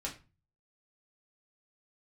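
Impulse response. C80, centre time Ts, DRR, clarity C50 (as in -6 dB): 17.5 dB, 16 ms, -3.5 dB, 11.5 dB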